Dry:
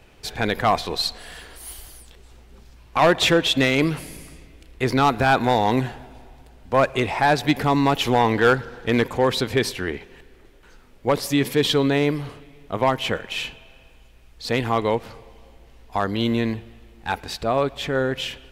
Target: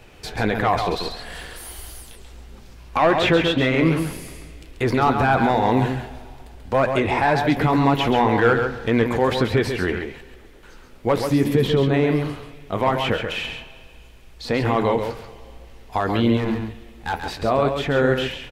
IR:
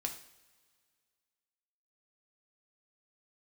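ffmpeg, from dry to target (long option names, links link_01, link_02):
-filter_complex "[0:a]asettb=1/sr,asplit=3[link_01][link_02][link_03];[link_01]atrim=end=11.304[link_04];[link_02]atrim=start=11.3:end=11.94,asetpts=PTS-STARTPTS,afade=type=in:duration=0.004:curve=qsin,afade=type=out:start_time=0.636:duration=0.004:curve=qsin,tiltshelf=frequency=690:gain=5[link_05];[link_03]atrim=start=11.936[link_06];[link_04][link_05]acrossfade=duration=0.004:curve1=hsin:curve2=qsin[link_07];[link_07][link_06]acrossfade=duration=0.004:curve1=qsin:curve2=hsin,acrossover=split=2600[link_08][link_09];[link_09]acompressor=threshold=-41dB:ratio=6[link_10];[link_08][link_10]amix=inputs=2:normalize=0,alimiter=limit=-14dB:level=0:latency=1:release=32,asettb=1/sr,asplit=3[link_11][link_12][link_13];[link_11]atrim=end=16.374[link_14];[link_12]atrim=start=16.37:end=17.14,asetpts=PTS-STARTPTS,afade=type=in:duration=0.004:curve=qsin,afade=type=out:start_time=0.766:duration=0.004:curve=qsin,asoftclip=type=hard:threshold=-22.5dB[link_15];[link_13]atrim=start=17.136[link_16];[link_14][link_15]acrossfade=duration=0.004:curve1=hsin:curve2=qsin[link_17];[link_17][link_16]acrossfade=duration=0.004:curve1=qsin:curve2=hsin,flanger=delay=8.3:depth=4.7:regen=-53:speed=1.9:shape=sinusoidal,aecho=1:1:136:0.473,volume=8.5dB"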